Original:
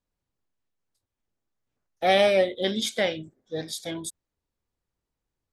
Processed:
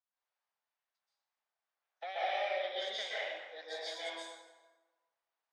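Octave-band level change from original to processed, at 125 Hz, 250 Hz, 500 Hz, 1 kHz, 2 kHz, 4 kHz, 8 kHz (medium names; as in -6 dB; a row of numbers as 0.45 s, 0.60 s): under -40 dB, -29.0 dB, -15.5 dB, -9.5 dB, -9.5 dB, -10.0 dB, -17.5 dB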